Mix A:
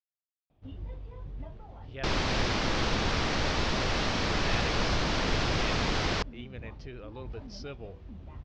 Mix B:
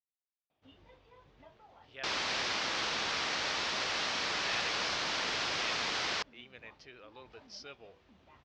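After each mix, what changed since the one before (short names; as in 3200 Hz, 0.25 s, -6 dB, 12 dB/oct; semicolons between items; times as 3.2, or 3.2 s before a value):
master: add HPF 1300 Hz 6 dB/oct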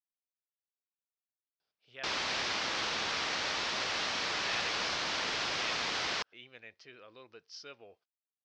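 first sound: muted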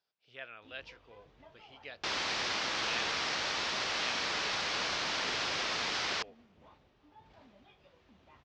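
speech: entry -1.60 s; first sound: unmuted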